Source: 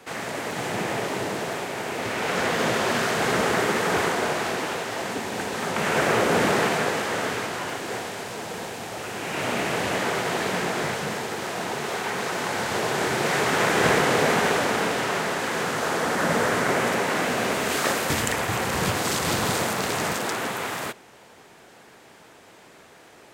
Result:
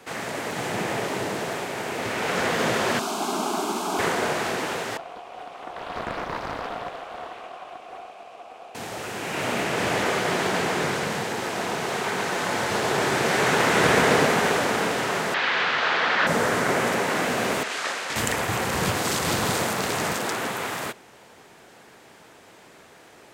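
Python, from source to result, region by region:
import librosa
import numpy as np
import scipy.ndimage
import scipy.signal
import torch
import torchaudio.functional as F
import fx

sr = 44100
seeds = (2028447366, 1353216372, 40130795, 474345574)

y = fx.chain(x, sr, fx.highpass(hz=150.0, slope=24),
    fx.fixed_phaser(hz=500.0, stages=6), at=(2.99, 3.99))
y = fx.chain(y, sr, fx.vowel_filter(vowel='a'),
    fx.high_shelf(hz=6500.0, db=10.5),
    fx.doppler_dist(depth_ms=0.92), at=(4.97, 8.75))
y = fx.chain(y, sr, fx.echo_single(ms=137, db=-3.5),
    fx.doppler_dist(depth_ms=0.25), at=(9.64, 14.26))
y = fx.chain(y, sr, fx.lowpass(hz=3900.0, slope=24),
    fx.tilt_shelf(db=-10.0, hz=760.0), at=(15.34, 16.27))
y = fx.chain(y, sr, fx.highpass(hz=1300.0, slope=6),
    fx.quant_companded(bits=6),
    fx.air_absorb(metres=69.0), at=(17.63, 18.16))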